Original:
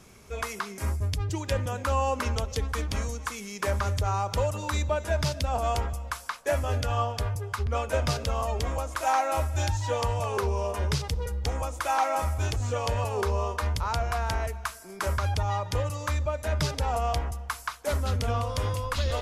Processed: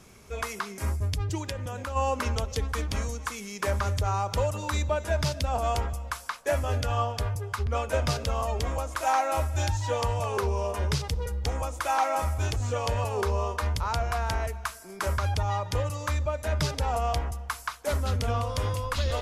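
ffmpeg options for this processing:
-filter_complex "[0:a]asplit=3[a][b][c];[a]afade=t=out:st=1.49:d=0.02[d];[b]acompressor=threshold=-30dB:ratio=6:attack=3.2:release=140:knee=1:detection=peak,afade=t=in:st=1.49:d=0.02,afade=t=out:st=1.95:d=0.02[e];[c]afade=t=in:st=1.95:d=0.02[f];[d][e][f]amix=inputs=3:normalize=0"

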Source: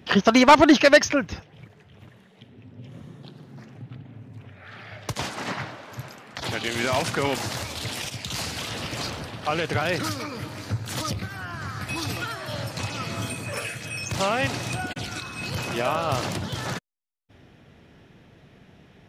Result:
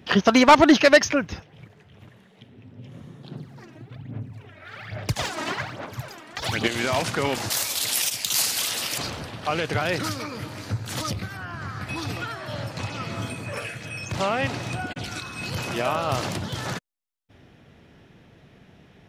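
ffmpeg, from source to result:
-filter_complex "[0:a]asplit=3[a][b][c];[a]afade=t=out:st=3.3:d=0.02[d];[b]aphaser=in_gain=1:out_gain=1:delay=3.2:decay=0.68:speed=1.2:type=sinusoidal,afade=t=in:st=3.3:d=0.02,afade=t=out:st=6.66:d=0.02[e];[c]afade=t=in:st=6.66:d=0.02[f];[d][e][f]amix=inputs=3:normalize=0,asettb=1/sr,asplit=3[g][h][i];[g]atrim=end=7.504[j];[h]atrim=start=7.5:end=8.98,asetpts=PTS-STARTPTS,afade=t=in:d=0.004:c=qsin,afade=t=out:st=1.476:d=0.004:c=qsin,aemphasis=mode=production:type=riaa[k];[i]atrim=start=8.976[l];[j][k]acrossfade=d=0.004:c1=hsin:c2=qsin[m];[m][l]acrossfade=d=0.004:c1=qsin:c2=hsin,asettb=1/sr,asplit=3[n][o][p];[n]atrim=end=11.374[q];[o]atrim=start=11.37:end=15.04,asetpts=PTS-STARTPTS,afade=t=in:d=0.004:c=qsin,afade=t=out:st=3.666:d=0.004:c=qsin,highshelf=f=5k:g=-9[r];[p]atrim=start=15.036[s];[q][r]acrossfade=d=0.004:c1=hsin:c2=qsin[t];[t][s]acrossfade=d=0.004:c1=qsin:c2=hsin"

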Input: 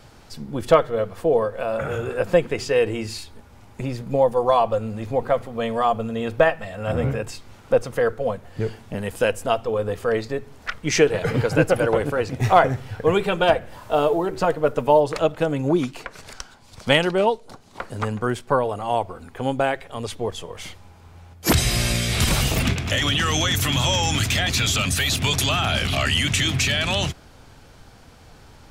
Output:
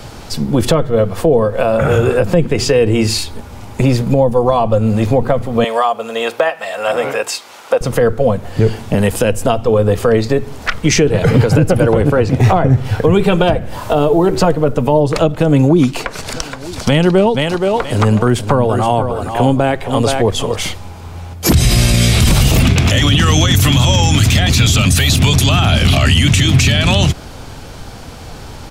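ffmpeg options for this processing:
-filter_complex "[0:a]asettb=1/sr,asplit=3[a][b][c];[a]atrim=end=5.644[d];[b]atrim=start=5.64:end=7.81,asetpts=PTS-STARTPTS,afade=t=in:d=0.004:c=qsin,afade=t=out:st=2.166:d=0.004:c=qsin,highpass=650[e];[c]atrim=start=7.806[f];[d][e]acrossfade=d=0.004:c1=hsin:c2=qsin[g];[g][f]acrossfade=d=0.004:c1=qsin:c2=hsin,asettb=1/sr,asplit=3[h][i][j];[h]atrim=end=12.014[k];[i]atrim=start=12.01:end=12.85,asetpts=PTS-STARTPTS,afade=t=in:d=0.004:c=qsin,afade=t=out:st=0.836:d=0.004:c=qsin,highshelf=f=4k:g=-6.5[l];[j]atrim=start=12.846[m];[k][l]acrossfade=d=0.004:c1=hsin:c2=qsin[n];[n][m]acrossfade=d=0.004:c1=qsin:c2=hsin,asplit=3[o][p][q];[o]afade=t=out:st=16.33:d=0.02[r];[p]aecho=1:1:472|944:0.316|0.0538,afade=t=in:st=16.33:d=0.02,afade=t=out:st=20.54:d=0.02[s];[q]afade=t=in:st=20.54:d=0.02[t];[r][s][t]amix=inputs=3:normalize=0,equalizer=f=1.7k:w=1.5:g=-3,acrossover=split=280[u][v];[v]acompressor=threshold=-28dB:ratio=6[w];[u][w]amix=inputs=2:normalize=0,alimiter=level_in=17.5dB:limit=-1dB:release=50:level=0:latency=1,volume=-1dB"

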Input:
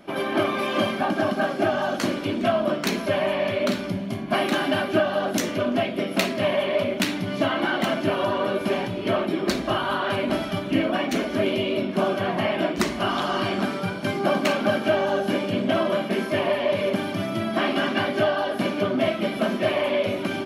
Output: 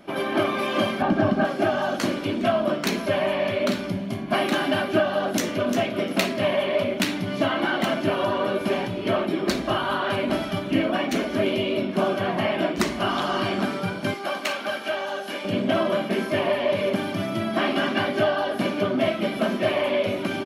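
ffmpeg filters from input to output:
-filter_complex "[0:a]asettb=1/sr,asplit=3[a][b][c];[a]atrim=end=1.024[d];[b]atrim=start=1.02:end=1.45,asetpts=PTS-STARTPTS,afade=t=in:d=0.004:c=qsin,afade=t=out:st=0.426:d=0.004:c=qsin,aemphasis=mode=reproduction:type=bsi[e];[c]atrim=start=1.446[f];[d][e]acrossfade=d=0.004:c1=hsin:c2=qsin[g];[g][f]acrossfade=d=0.004:c1=qsin:c2=hsin,asplit=2[h][i];[i]afade=t=in:st=5.31:d=0.01,afade=t=out:st=5.77:d=0.01,aecho=0:1:350|700:0.354813|0.0354813[j];[h][j]amix=inputs=2:normalize=0,asettb=1/sr,asplit=3[k][l][m];[k]atrim=end=14.144[n];[l]atrim=start=14.14:end=15.45,asetpts=PTS-STARTPTS,afade=t=in:d=0.004:c=qsin,afade=t=out:st=1.306:d=0.004:c=qsin,highpass=f=1.2k:p=1[o];[m]atrim=start=15.446[p];[n][o]acrossfade=d=0.004:c1=hsin:c2=qsin[q];[q][p]acrossfade=d=0.004:c1=qsin:c2=hsin"

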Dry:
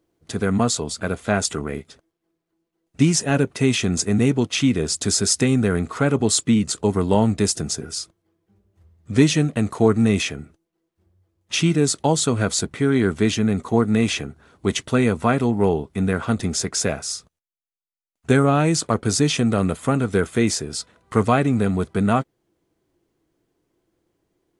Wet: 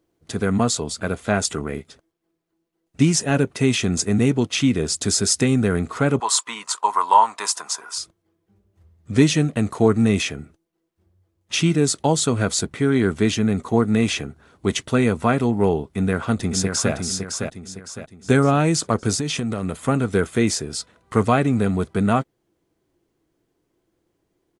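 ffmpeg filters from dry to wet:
-filter_complex "[0:a]asettb=1/sr,asplit=3[a][b][c];[a]atrim=end=6.204[d];[b]atrim=start=6.2:end=7.98,asetpts=PTS-STARTPTS,afade=t=in:d=0.004:c=qsin,afade=t=out:st=1.776:d=0.004:c=qsin,highpass=f=1k:t=q:w=11[e];[c]atrim=start=7.976[f];[d][e]acrossfade=d=0.004:c1=hsin:c2=qsin[g];[g][f]acrossfade=d=0.004:c1=qsin:c2=hsin,asplit=2[h][i];[i]afade=t=in:st=15.84:d=0.01,afade=t=out:st=16.93:d=0.01,aecho=0:1:560|1120|1680|2240|2800:0.530884|0.212354|0.0849415|0.0339766|0.0135906[j];[h][j]amix=inputs=2:normalize=0,asettb=1/sr,asplit=3[k][l][m];[k]atrim=end=19.144[n];[l]atrim=start=19.14:end=19.88,asetpts=PTS-STARTPTS,afade=t=in:d=0.004:c=qsin,afade=t=out:st=0.736:d=0.004:c=qsin,acompressor=threshold=-20dB:ratio=6:attack=3.2:release=140:knee=1:detection=peak[o];[m]atrim=start=19.876[p];[n][o]acrossfade=d=0.004:c1=hsin:c2=qsin[q];[q][p]acrossfade=d=0.004:c1=qsin:c2=hsin"

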